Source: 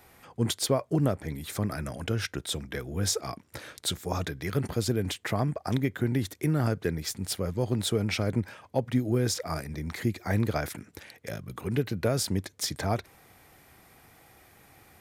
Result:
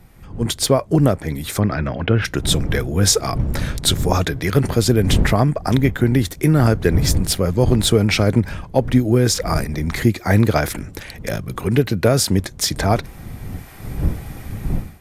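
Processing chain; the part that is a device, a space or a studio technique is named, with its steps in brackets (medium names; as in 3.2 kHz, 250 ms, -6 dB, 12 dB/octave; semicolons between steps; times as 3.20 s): 1.59–2.24 s: low-pass 4.8 kHz -> 2.7 kHz 24 dB/octave; smartphone video outdoors (wind noise 120 Hz -38 dBFS; level rider gain up to 15 dB; AAC 96 kbps 32 kHz)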